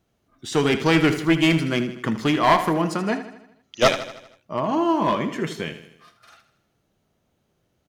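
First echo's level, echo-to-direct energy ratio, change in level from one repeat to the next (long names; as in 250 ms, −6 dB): −12.0 dB, −10.5 dB, −5.5 dB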